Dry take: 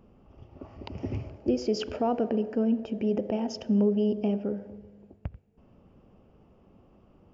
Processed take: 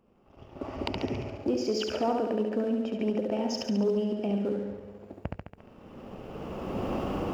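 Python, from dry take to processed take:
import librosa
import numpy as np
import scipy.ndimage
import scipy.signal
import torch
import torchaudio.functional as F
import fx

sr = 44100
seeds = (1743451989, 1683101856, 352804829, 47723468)

y = fx.recorder_agc(x, sr, target_db=-18.5, rise_db_per_s=16.0, max_gain_db=30)
y = fx.low_shelf(y, sr, hz=87.0, db=11.0, at=(4.29, 4.77))
y = fx.room_flutter(y, sr, wall_m=12.0, rt60_s=0.89)
y = fx.leveller(y, sr, passes=1)
y = fx.low_shelf(y, sr, hz=190.0, db=-10.5)
y = y * 10.0 ** (-4.0 / 20.0)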